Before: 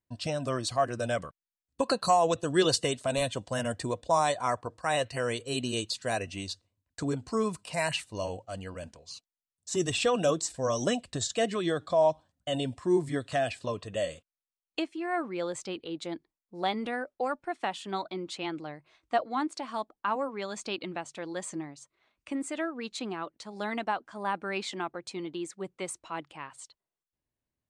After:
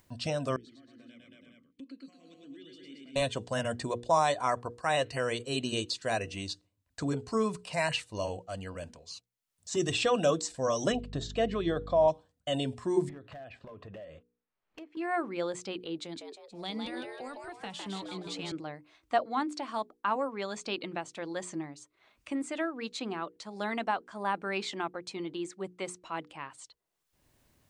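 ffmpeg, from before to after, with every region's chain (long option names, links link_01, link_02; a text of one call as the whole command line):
ffmpeg -i in.wav -filter_complex "[0:a]asettb=1/sr,asplit=3[link_01][link_02][link_03];[link_01]atrim=end=0.564[link_04];[link_02]atrim=start=0.56:end=3.16,asetpts=PTS-STARTPTS,afade=type=in:duration=0.004:curve=qsin,afade=type=out:start_time=2.596:duration=0.004:curve=qsin,aecho=1:1:106|227|335|412:0.668|0.473|0.133|0.119,atrim=end_sample=114660,acompressor=threshold=-37dB:ratio=3:attack=3.2:release=140:knee=1:detection=peak,asplit=3[link_05][link_06][link_07];[link_05]bandpass=frequency=270:width_type=q:width=8,volume=0dB[link_08];[link_06]bandpass=frequency=2290:width_type=q:width=8,volume=-6dB[link_09];[link_07]bandpass=frequency=3010:width_type=q:width=8,volume=-9dB[link_10];[link_08][link_09][link_10]amix=inputs=3:normalize=0[link_11];[link_03]atrim=start=3.156[link_12];[link_04][link_11]acrossfade=duration=0.004:curve1=hsin:curve2=qsin[link_13];[link_13][link_12]acrossfade=duration=0.004:curve1=qsin:curve2=hsin,asettb=1/sr,asplit=3[link_14][link_15][link_16];[link_14]atrim=end=10.924[link_17];[link_15]atrim=start=10.92:end=12.08,asetpts=PTS-STARTPTS,afade=type=in:duration=0.004:curve=qsin,afade=type=out:start_time=1.156:duration=0.004:curve=qsin,lowpass=3400,equalizer=frequency=1800:width_type=o:width=1.4:gain=-4,aeval=exprs='val(0)+0.00794*(sin(2*PI*50*n/s)+sin(2*PI*2*50*n/s)/2+sin(2*PI*3*50*n/s)/3+sin(2*PI*4*50*n/s)/4+sin(2*PI*5*50*n/s)/5)':channel_layout=same[link_18];[link_16]atrim=start=12.076[link_19];[link_17][link_18]acrossfade=duration=0.004:curve1=hsin:curve2=qsin[link_20];[link_20][link_19]acrossfade=duration=0.004:curve1=qsin:curve2=hsin,asettb=1/sr,asplit=3[link_21][link_22][link_23];[link_21]atrim=end=13.094[link_24];[link_22]atrim=start=13.09:end=14.97,asetpts=PTS-STARTPTS,afade=type=in:duration=0.004:curve=qsin,afade=type=out:start_time=1.876:duration=0.004:curve=qsin,lowpass=1900,acompressor=threshold=-41dB:ratio=16:attack=3.2:release=140:knee=1:detection=peak,asoftclip=type=hard:threshold=-40dB[link_25];[link_23]atrim=start=14.966[link_26];[link_24][link_25]acrossfade=duration=0.004:curve1=hsin:curve2=qsin[link_27];[link_27][link_26]acrossfade=duration=0.004:curve1=qsin:curve2=hsin,asettb=1/sr,asplit=3[link_28][link_29][link_30];[link_28]atrim=end=15.994[link_31];[link_29]atrim=start=15.99:end=18.52,asetpts=PTS-STARTPTS,afade=type=in:duration=0.004:curve=qsin,afade=type=out:start_time=2.526:duration=0.004:curve=qsin,asubboost=boost=5:cutoff=170,acrossover=split=240|3000[link_32][link_33][link_34];[link_33]acompressor=threshold=-44dB:ratio=3:attack=3.2:release=140:knee=2.83:detection=peak[link_35];[link_32][link_35][link_34]amix=inputs=3:normalize=0,asplit=6[link_36][link_37][link_38][link_39][link_40][link_41];[link_37]adelay=158,afreqshift=110,volume=-4dB[link_42];[link_38]adelay=316,afreqshift=220,volume=-11.5dB[link_43];[link_39]adelay=474,afreqshift=330,volume=-19.1dB[link_44];[link_40]adelay=632,afreqshift=440,volume=-26.6dB[link_45];[link_41]adelay=790,afreqshift=550,volume=-34.1dB[link_46];[link_36][link_42][link_43][link_44][link_45][link_46]amix=inputs=6:normalize=0,atrim=end_sample=111573[link_47];[link_30]atrim=start=18.516[link_48];[link_31][link_47]acrossfade=duration=0.004:curve1=hsin:curve2=qsin[link_49];[link_49][link_48]acrossfade=duration=0.004:curve1=qsin:curve2=hsin,acrossover=split=7900[link_50][link_51];[link_51]acompressor=threshold=-57dB:ratio=4:attack=1:release=60[link_52];[link_50][link_52]amix=inputs=2:normalize=0,bandreject=frequency=60:width_type=h:width=6,bandreject=frequency=120:width_type=h:width=6,bandreject=frequency=180:width_type=h:width=6,bandreject=frequency=240:width_type=h:width=6,bandreject=frequency=300:width_type=h:width=6,bandreject=frequency=360:width_type=h:width=6,bandreject=frequency=420:width_type=h:width=6,bandreject=frequency=480:width_type=h:width=6,acompressor=mode=upward:threshold=-49dB:ratio=2.5" out.wav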